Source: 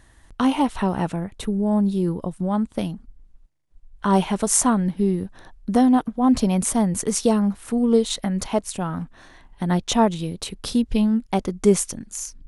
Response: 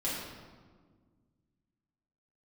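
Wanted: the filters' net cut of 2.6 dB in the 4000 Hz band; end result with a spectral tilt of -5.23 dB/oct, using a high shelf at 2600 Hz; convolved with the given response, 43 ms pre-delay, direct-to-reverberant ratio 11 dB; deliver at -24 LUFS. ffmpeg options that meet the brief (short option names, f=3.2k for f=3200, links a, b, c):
-filter_complex "[0:a]highshelf=f=2.6k:g=3.5,equalizer=f=4k:t=o:g=-6.5,asplit=2[a][b];[1:a]atrim=start_sample=2205,adelay=43[c];[b][c]afir=irnorm=-1:irlink=0,volume=-17dB[d];[a][d]amix=inputs=2:normalize=0,volume=-3dB"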